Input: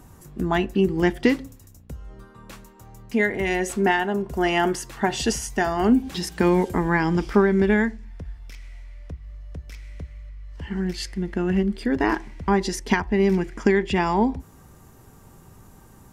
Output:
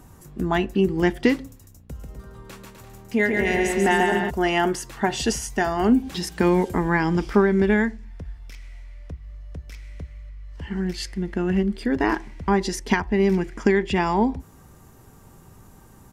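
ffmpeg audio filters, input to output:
ffmpeg -i in.wav -filter_complex "[0:a]asplit=3[link_01][link_02][link_03];[link_01]afade=type=out:start_time=1.94:duration=0.02[link_04];[link_02]aecho=1:1:140|252|341.6|413.3|470.6:0.631|0.398|0.251|0.158|0.1,afade=type=in:start_time=1.94:duration=0.02,afade=type=out:start_time=4.29:duration=0.02[link_05];[link_03]afade=type=in:start_time=4.29:duration=0.02[link_06];[link_04][link_05][link_06]amix=inputs=3:normalize=0" out.wav

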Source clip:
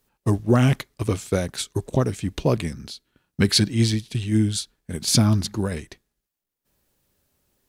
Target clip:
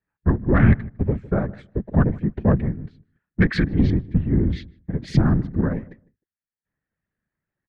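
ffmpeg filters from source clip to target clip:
ffmpeg -i in.wav -filter_complex "[0:a]afwtdn=0.0282,equalizer=frequency=140:width=1.9:gain=11.5,asplit=2[link_01][link_02];[link_02]alimiter=limit=-11.5dB:level=0:latency=1,volume=-2.5dB[link_03];[link_01][link_03]amix=inputs=2:normalize=0,afftfilt=real='hypot(re,im)*cos(2*PI*random(0))':imag='hypot(re,im)*sin(2*PI*random(1))':win_size=512:overlap=0.75,lowpass=frequency=1800:width_type=q:width=4.8,acontrast=38,asplit=2[link_04][link_05];[link_05]adelay=154,lowpass=frequency=850:poles=1,volume=-19dB,asplit=2[link_06][link_07];[link_07]adelay=154,lowpass=frequency=850:poles=1,volume=0.17[link_08];[link_06][link_08]amix=inputs=2:normalize=0[link_09];[link_04][link_09]amix=inputs=2:normalize=0,volume=-5dB" out.wav

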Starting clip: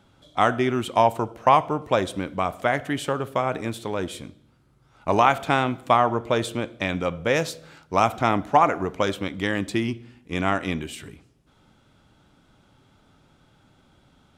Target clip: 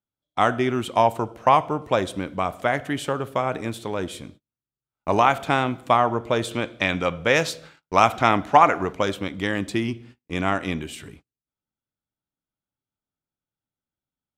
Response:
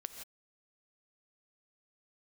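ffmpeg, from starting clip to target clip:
-filter_complex "[0:a]agate=range=-36dB:threshold=-45dB:ratio=16:detection=peak,asettb=1/sr,asplit=3[link_01][link_02][link_03];[link_01]atrim=end=6.514[link_04];[link_02]atrim=start=6.51:end=8.93,asetpts=PTS-STARTPTS,afade=type=in:duration=0.004:curve=qsin,afade=type=out:start_time=2.416:duration=0.004:curve=qsin,equalizer=frequency=2500:width=0.36:gain=5.5[link_05];[link_03]atrim=start=8.926[link_06];[link_04][link_05]acrossfade=duration=0.004:curve1=hsin:curve2=qsin[link_07];[link_07][link_06]acrossfade=duration=0.004:curve1=qsin:curve2=hsin"

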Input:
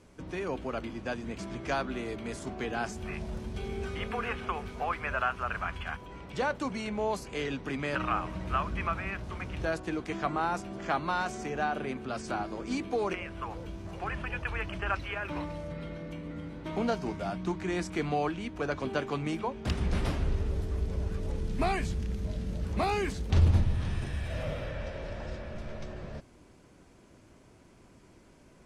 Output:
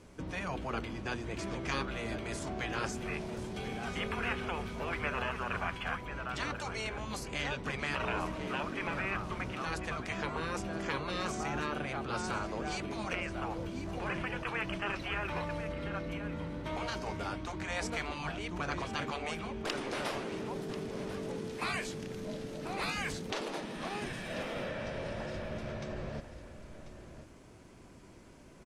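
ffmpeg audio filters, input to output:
ffmpeg -i in.wav -af "aecho=1:1:1040:0.224,afftfilt=real='re*lt(hypot(re,im),0.1)':imag='im*lt(hypot(re,im),0.1)':win_size=1024:overlap=0.75,volume=2dB" out.wav

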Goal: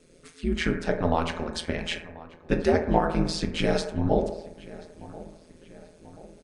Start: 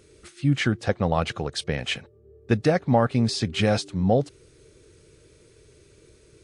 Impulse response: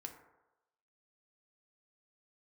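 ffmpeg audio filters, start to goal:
-filter_complex "[0:a]asplit=2[link_01][link_02];[link_02]adelay=1035,lowpass=frequency=3000:poles=1,volume=-19dB,asplit=2[link_03][link_04];[link_04]adelay=1035,lowpass=frequency=3000:poles=1,volume=0.52,asplit=2[link_05][link_06];[link_06]adelay=1035,lowpass=frequency=3000:poles=1,volume=0.52,asplit=2[link_07][link_08];[link_08]adelay=1035,lowpass=frequency=3000:poles=1,volume=0.52[link_09];[link_01][link_03][link_05][link_07][link_09]amix=inputs=5:normalize=0[link_10];[1:a]atrim=start_sample=2205,asetrate=48510,aresample=44100[link_11];[link_10][link_11]afir=irnorm=-1:irlink=0,aeval=exprs='val(0)*sin(2*PI*83*n/s)':channel_layout=same,volume=5.5dB"

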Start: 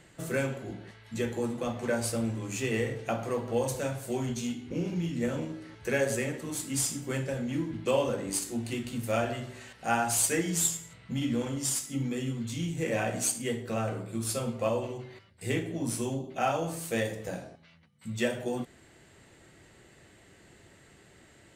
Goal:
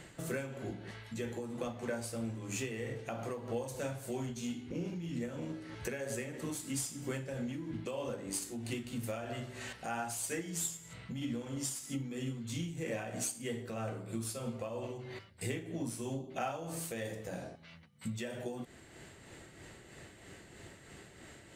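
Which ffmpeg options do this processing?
ffmpeg -i in.wav -af "acompressor=threshold=-41dB:ratio=4,tremolo=f=3.1:d=0.44,volume=5dB" out.wav

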